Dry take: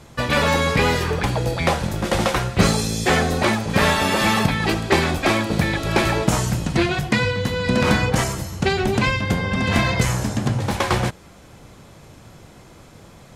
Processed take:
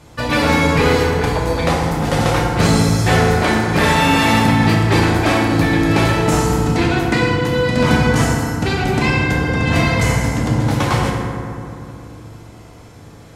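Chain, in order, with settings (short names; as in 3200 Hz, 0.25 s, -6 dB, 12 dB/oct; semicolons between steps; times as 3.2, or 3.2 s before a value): FDN reverb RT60 2.7 s, low-frequency decay 1.2×, high-frequency decay 0.4×, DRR -2.5 dB; gain -1 dB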